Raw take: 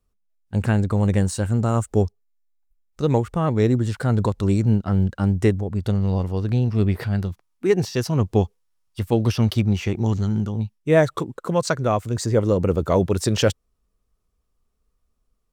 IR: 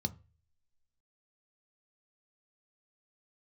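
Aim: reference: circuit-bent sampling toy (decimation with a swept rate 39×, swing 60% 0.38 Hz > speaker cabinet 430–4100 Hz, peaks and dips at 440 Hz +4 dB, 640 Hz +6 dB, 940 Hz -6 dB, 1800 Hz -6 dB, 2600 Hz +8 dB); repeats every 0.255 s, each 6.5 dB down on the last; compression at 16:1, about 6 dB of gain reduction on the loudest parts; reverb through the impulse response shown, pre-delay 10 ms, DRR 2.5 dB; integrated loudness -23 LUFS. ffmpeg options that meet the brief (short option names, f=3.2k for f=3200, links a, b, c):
-filter_complex "[0:a]acompressor=threshold=-18dB:ratio=16,aecho=1:1:255|510|765|1020|1275|1530:0.473|0.222|0.105|0.0491|0.0231|0.0109,asplit=2[a][b];[1:a]atrim=start_sample=2205,adelay=10[c];[b][c]afir=irnorm=-1:irlink=0,volume=-3.5dB[d];[a][d]amix=inputs=2:normalize=0,acrusher=samples=39:mix=1:aa=0.000001:lfo=1:lforange=23.4:lforate=0.38,highpass=430,equalizer=f=440:t=q:w=4:g=4,equalizer=f=640:t=q:w=4:g=6,equalizer=f=940:t=q:w=4:g=-6,equalizer=f=1.8k:t=q:w=4:g=-6,equalizer=f=2.6k:t=q:w=4:g=8,lowpass=f=4.1k:w=0.5412,lowpass=f=4.1k:w=1.3066"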